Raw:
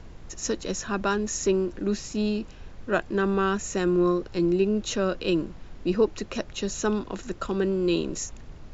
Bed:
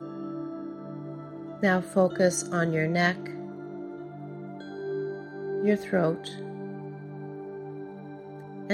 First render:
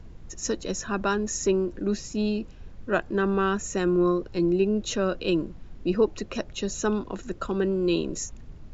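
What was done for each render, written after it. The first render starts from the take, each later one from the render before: noise reduction 7 dB, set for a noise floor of -44 dBFS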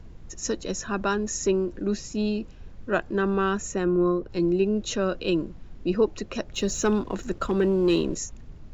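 3.71–4.29 s: treble shelf 3.7 kHz -> 2.4 kHz -11 dB; 6.53–8.15 s: waveshaping leveller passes 1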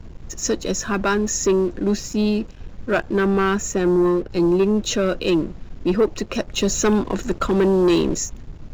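waveshaping leveller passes 2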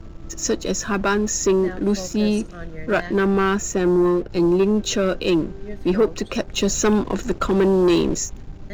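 add bed -11 dB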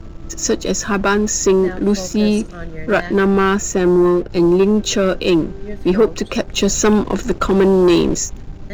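trim +4.5 dB

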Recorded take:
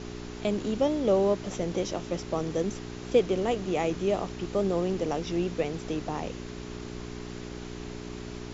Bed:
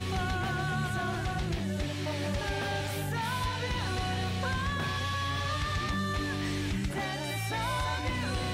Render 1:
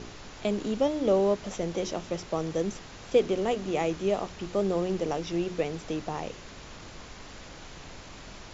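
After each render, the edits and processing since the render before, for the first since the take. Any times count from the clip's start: de-hum 60 Hz, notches 7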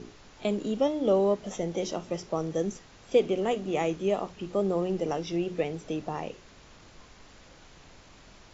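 noise print and reduce 8 dB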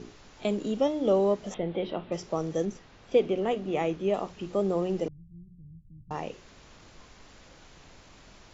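1.54–2.12 s: steep low-pass 3.8 kHz 48 dB/octave; 2.65–4.14 s: distance through air 110 m; 5.08–6.11 s: inverse Chebyshev low-pass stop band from 580 Hz, stop band 70 dB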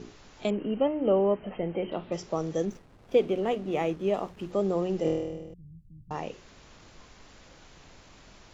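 0.50–1.92 s: brick-wall FIR low-pass 3.2 kHz; 2.66–4.52 s: hysteresis with a dead band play -49 dBFS; 5.02–5.54 s: flutter echo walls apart 4.3 m, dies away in 1.2 s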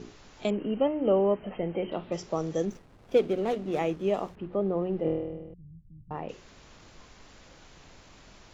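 3.15–3.79 s: median filter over 25 samples; 4.35–6.29 s: distance through air 490 m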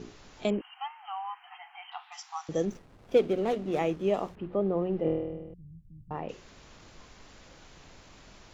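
0.61–2.49 s: brick-wall FIR high-pass 710 Hz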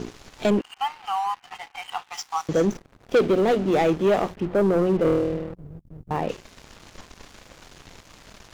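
waveshaping leveller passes 3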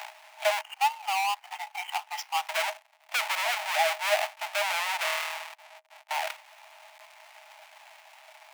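square wave that keeps the level; rippled Chebyshev high-pass 610 Hz, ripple 9 dB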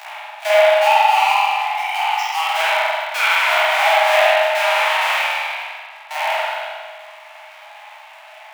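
spectral sustain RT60 1.56 s; spring tank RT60 1.3 s, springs 43 ms, chirp 60 ms, DRR -8.5 dB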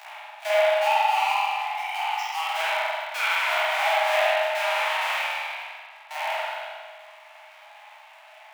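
trim -8 dB

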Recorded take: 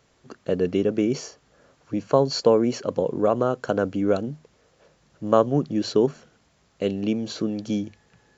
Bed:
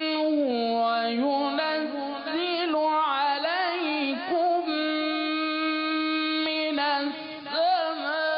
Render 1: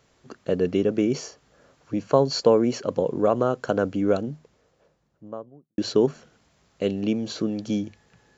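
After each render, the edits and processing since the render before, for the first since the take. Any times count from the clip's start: 4.02–5.78 s: studio fade out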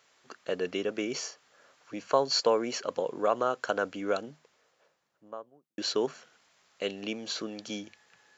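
high-pass 1.2 kHz 6 dB/octave; peaking EQ 1.6 kHz +3 dB 2.6 oct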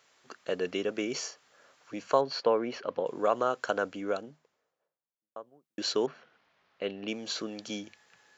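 2.21–3.06 s: distance through air 240 m; 3.61–5.36 s: studio fade out; 6.06–7.08 s: distance through air 270 m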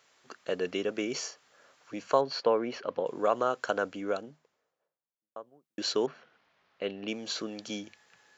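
no audible change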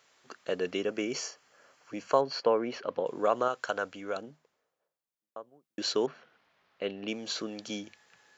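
0.79–2.66 s: band-stop 3.7 kHz, Q 6.6; 3.48–4.16 s: peaking EQ 270 Hz -6.5 dB 2.2 oct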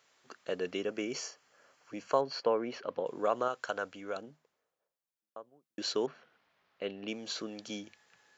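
trim -3.5 dB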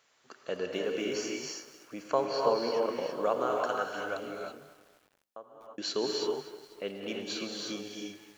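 gated-style reverb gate 360 ms rising, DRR -0.5 dB; bit-crushed delay 246 ms, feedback 55%, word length 8-bit, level -15 dB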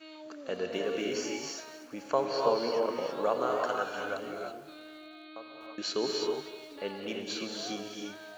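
add bed -22 dB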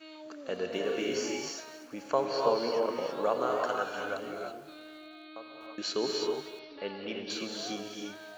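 0.81–1.49 s: doubling 40 ms -5.5 dB; 6.59–7.30 s: elliptic low-pass 5.3 kHz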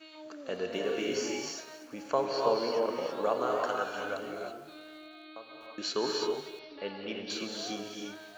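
5.96–6.26 s: time-frequency box 820–1800 Hz +6 dB; de-hum 78.37 Hz, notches 29

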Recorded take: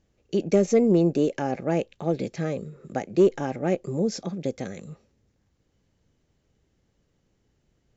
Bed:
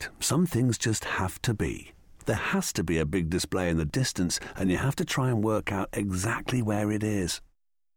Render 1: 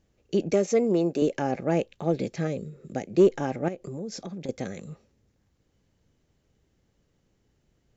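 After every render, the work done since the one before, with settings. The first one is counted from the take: 0.53–1.22 s: high-pass 380 Hz 6 dB/octave; 2.47–3.12 s: peaking EQ 1.1 kHz -9 dB 1.3 oct; 3.68–4.49 s: compression 4:1, threshold -33 dBFS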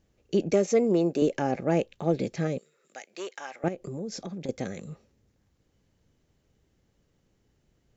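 2.58–3.64 s: high-pass 1.2 kHz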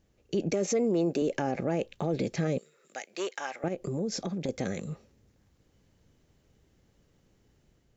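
level rider gain up to 3.5 dB; peak limiter -19.5 dBFS, peak gain reduction 10.5 dB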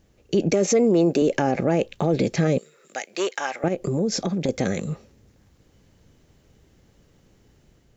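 trim +8.5 dB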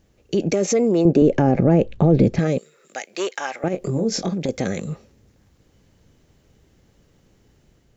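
1.05–2.39 s: tilt EQ -3.5 dB/octave; 3.71–4.34 s: doubling 22 ms -5.5 dB

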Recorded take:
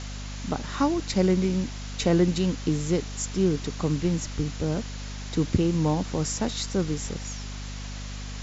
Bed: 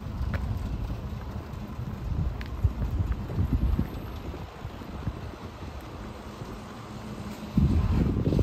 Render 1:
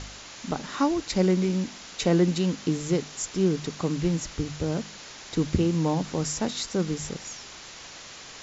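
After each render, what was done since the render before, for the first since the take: de-hum 50 Hz, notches 5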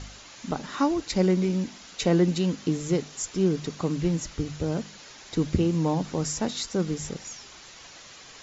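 noise reduction 6 dB, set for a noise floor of -44 dBFS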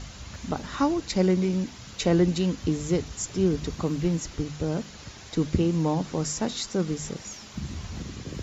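add bed -12 dB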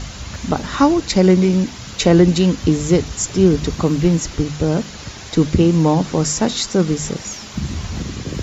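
trim +10.5 dB; peak limiter -2 dBFS, peak gain reduction 3 dB

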